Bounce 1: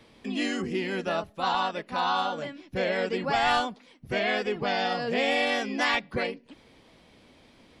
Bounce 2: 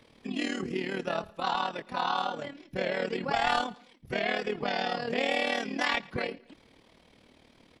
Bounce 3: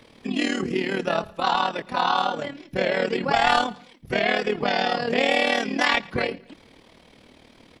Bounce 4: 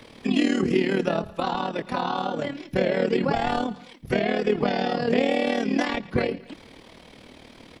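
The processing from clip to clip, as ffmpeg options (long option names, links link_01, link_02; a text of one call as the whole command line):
ffmpeg -i in.wav -af "tremolo=f=38:d=0.71,aecho=1:1:112|224:0.0708|0.0255" out.wav
ffmpeg -i in.wav -af "bandreject=frequency=45.62:width_type=h:width=4,bandreject=frequency=91.24:width_type=h:width=4,bandreject=frequency=136.86:width_type=h:width=4,bandreject=frequency=182.48:width_type=h:width=4,volume=7.5dB" out.wav
ffmpeg -i in.wav -filter_complex "[0:a]acrossover=split=500[link_01][link_02];[link_02]acompressor=threshold=-33dB:ratio=6[link_03];[link_01][link_03]amix=inputs=2:normalize=0,volume=4.5dB" out.wav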